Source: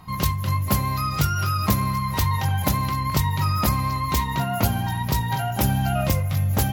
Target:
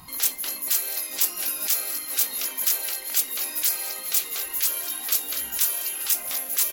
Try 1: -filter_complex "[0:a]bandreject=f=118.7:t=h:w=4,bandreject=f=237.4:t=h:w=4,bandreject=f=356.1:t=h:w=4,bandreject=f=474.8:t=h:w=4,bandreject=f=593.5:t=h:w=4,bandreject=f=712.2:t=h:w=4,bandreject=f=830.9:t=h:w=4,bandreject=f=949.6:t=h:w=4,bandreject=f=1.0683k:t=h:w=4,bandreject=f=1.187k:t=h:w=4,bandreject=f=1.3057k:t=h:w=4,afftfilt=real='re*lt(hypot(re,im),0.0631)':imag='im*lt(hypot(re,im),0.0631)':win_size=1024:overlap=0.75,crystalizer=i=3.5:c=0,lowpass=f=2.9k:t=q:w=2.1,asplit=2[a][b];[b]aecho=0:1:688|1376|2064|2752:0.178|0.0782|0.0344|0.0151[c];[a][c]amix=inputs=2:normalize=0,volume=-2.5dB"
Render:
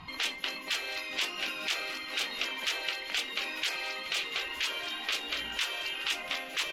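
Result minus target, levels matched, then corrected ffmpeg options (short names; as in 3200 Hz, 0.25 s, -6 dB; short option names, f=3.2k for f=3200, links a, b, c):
4000 Hz band +9.5 dB
-filter_complex "[0:a]bandreject=f=118.7:t=h:w=4,bandreject=f=237.4:t=h:w=4,bandreject=f=356.1:t=h:w=4,bandreject=f=474.8:t=h:w=4,bandreject=f=593.5:t=h:w=4,bandreject=f=712.2:t=h:w=4,bandreject=f=830.9:t=h:w=4,bandreject=f=949.6:t=h:w=4,bandreject=f=1.0683k:t=h:w=4,bandreject=f=1.187k:t=h:w=4,bandreject=f=1.3057k:t=h:w=4,afftfilt=real='re*lt(hypot(re,im),0.0631)':imag='im*lt(hypot(re,im),0.0631)':win_size=1024:overlap=0.75,crystalizer=i=3.5:c=0,asplit=2[a][b];[b]aecho=0:1:688|1376|2064|2752:0.178|0.0782|0.0344|0.0151[c];[a][c]amix=inputs=2:normalize=0,volume=-2.5dB"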